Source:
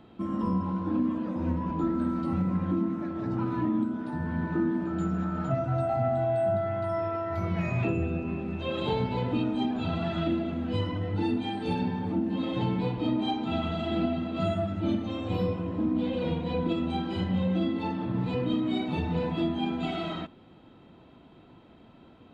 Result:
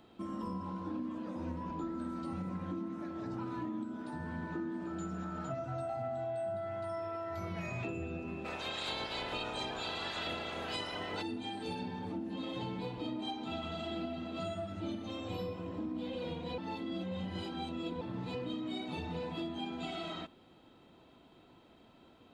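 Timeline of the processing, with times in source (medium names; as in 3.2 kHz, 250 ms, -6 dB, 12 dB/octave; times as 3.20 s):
8.44–11.21 s: spectral peaks clipped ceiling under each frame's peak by 24 dB
16.58–18.01 s: reverse
whole clip: tone controls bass -9 dB, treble +10 dB; compression 2.5:1, threshold -33 dBFS; bass shelf 120 Hz +6.5 dB; trim -5 dB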